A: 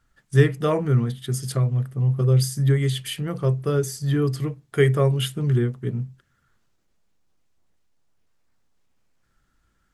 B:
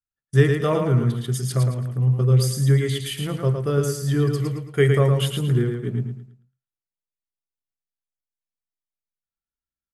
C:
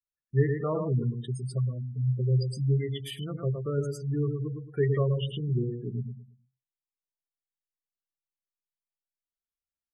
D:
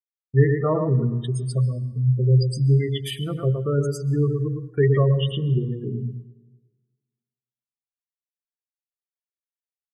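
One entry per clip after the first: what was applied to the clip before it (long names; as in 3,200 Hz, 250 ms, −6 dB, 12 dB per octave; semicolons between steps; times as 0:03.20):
downward expander −36 dBFS; on a send: repeating echo 111 ms, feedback 32%, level −5 dB
gate on every frequency bin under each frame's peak −20 dB strong; level −8 dB
downward expander −38 dBFS; mains-hum notches 60/120/180/240/300/360/420/480/540 Hz; dense smooth reverb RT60 1.4 s, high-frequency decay 0.7×, pre-delay 115 ms, DRR 19.5 dB; level +8 dB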